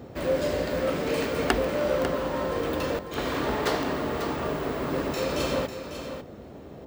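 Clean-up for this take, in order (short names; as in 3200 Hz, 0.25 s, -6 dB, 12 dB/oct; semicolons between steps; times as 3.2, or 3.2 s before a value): de-click; noise print and reduce 30 dB; inverse comb 0.547 s -9.5 dB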